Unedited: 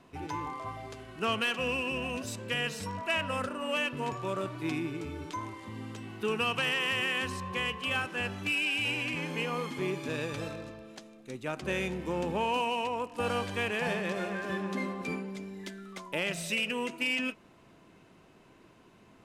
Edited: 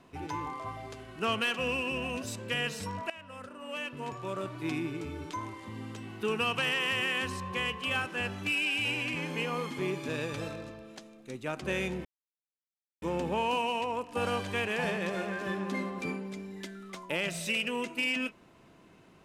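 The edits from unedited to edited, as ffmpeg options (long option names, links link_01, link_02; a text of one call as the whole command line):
ffmpeg -i in.wav -filter_complex "[0:a]asplit=3[link_01][link_02][link_03];[link_01]atrim=end=3.1,asetpts=PTS-STARTPTS,afade=type=out:start_time=3.096:duration=0.004:curve=hsin:silence=0.1[link_04];[link_02]atrim=start=3.1:end=12.05,asetpts=PTS-STARTPTS,afade=type=in:duration=1.71:silence=0.1,afade=type=out:start_time=8.946:duration=0.004:curve=hsin,apad=pad_dur=0.97[link_05];[link_03]atrim=start=12.05,asetpts=PTS-STARTPTS,afade=type=in:duration=0.004:curve=hsin[link_06];[link_04][link_05][link_06]concat=n=3:v=0:a=1" out.wav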